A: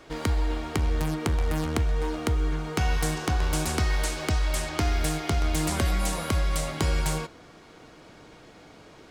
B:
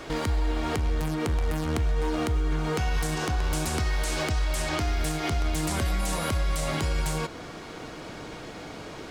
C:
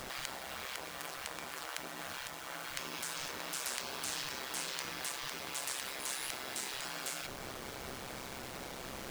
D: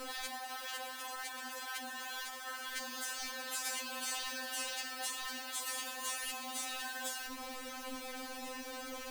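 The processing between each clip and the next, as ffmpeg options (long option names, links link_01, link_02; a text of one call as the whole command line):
ffmpeg -i in.wav -filter_complex "[0:a]asplit=2[link_01][link_02];[link_02]acompressor=threshold=-34dB:ratio=6,volume=2dB[link_03];[link_01][link_03]amix=inputs=2:normalize=0,alimiter=limit=-21.5dB:level=0:latency=1:release=129,volume=3dB" out.wav
ffmpeg -i in.wav -af "acrusher=bits=6:mix=0:aa=0.000001,afftfilt=real='re*lt(hypot(re,im),0.0562)':imag='im*lt(hypot(re,im),0.0562)':win_size=1024:overlap=0.75,aeval=exprs='val(0)*sin(2*PI*66*n/s)':channel_layout=same,volume=-1.5dB" out.wav
ffmpeg -i in.wav -af "afftfilt=real='re*3.46*eq(mod(b,12),0)':imag='im*3.46*eq(mod(b,12),0)':win_size=2048:overlap=0.75,volume=2.5dB" out.wav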